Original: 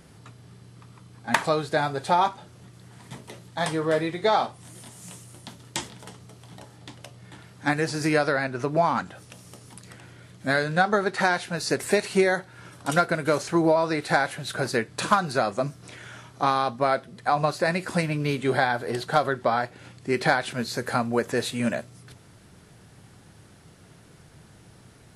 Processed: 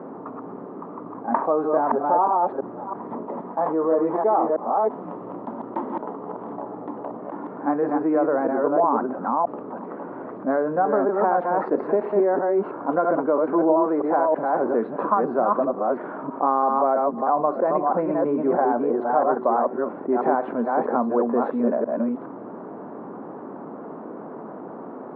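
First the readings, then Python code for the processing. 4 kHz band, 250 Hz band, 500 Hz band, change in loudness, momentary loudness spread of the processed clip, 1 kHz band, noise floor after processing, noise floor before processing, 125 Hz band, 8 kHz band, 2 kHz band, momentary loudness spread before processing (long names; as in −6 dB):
below −30 dB, +4.5 dB, +5.0 dB, +2.5 dB, 16 LU, +4.0 dB, −37 dBFS, −52 dBFS, −10.0 dB, below −40 dB, −10.5 dB, 20 LU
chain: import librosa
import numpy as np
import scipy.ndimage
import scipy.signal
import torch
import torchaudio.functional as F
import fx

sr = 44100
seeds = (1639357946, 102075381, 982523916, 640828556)

y = fx.reverse_delay(x, sr, ms=326, wet_db=-3)
y = scipy.signal.sosfilt(scipy.signal.ellip(3, 1.0, 70, [240.0, 1100.0], 'bandpass', fs=sr, output='sos'), y)
y = fx.env_flatten(y, sr, amount_pct=50)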